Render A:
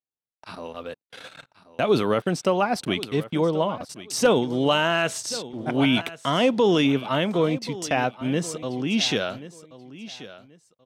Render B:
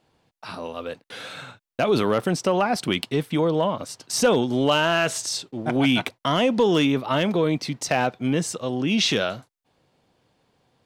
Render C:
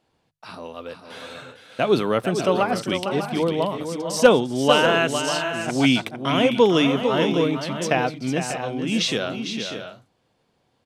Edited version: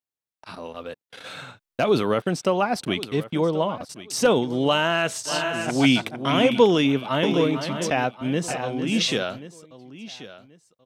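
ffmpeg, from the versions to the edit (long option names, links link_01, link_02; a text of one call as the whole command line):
ffmpeg -i take0.wav -i take1.wav -i take2.wav -filter_complex "[2:a]asplit=3[link_01][link_02][link_03];[0:a]asplit=5[link_04][link_05][link_06][link_07][link_08];[link_04]atrim=end=1.262[link_09];[1:a]atrim=start=1.258:end=1.902[link_10];[link_05]atrim=start=1.898:end=5.35[link_11];[link_01]atrim=start=5.25:end=6.74[link_12];[link_06]atrim=start=6.64:end=7.232[link_13];[link_02]atrim=start=7.228:end=7.902[link_14];[link_07]atrim=start=7.898:end=8.482[link_15];[link_03]atrim=start=8.478:end=9.232[link_16];[link_08]atrim=start=9.228[link_17];[link_09][link_10]acrossfade=duration=0.004:curve1=hsin:curve2=hsin[link_18];[link_18][link_11]acrossfade=duration=0.004:curve1=hsin:curve2=hsin[link_19];[link_19][link_12]acrossfade=duration=0.1:curve1=tri:curve2=tri[link_20];[link_20][link_13]acrossfade=duration=0.1:curve1=tri:curve2=tri[link_21];[link_21][link_14]acrossfade=duration=0.004:curve1=hsin:curve2=hsin[link_22];[link_22][link_15]acrossfade=duration=0.004:curve1=hsin:curve2=hsin[link_23];[link_23][link_16]acrossfade=duration=0.004:curve1=hsin:curve2=hsin[link_24];[link_24][link_17]acrossfade=duration=0.004:curve1=hsin:curve2=hsin" out.wav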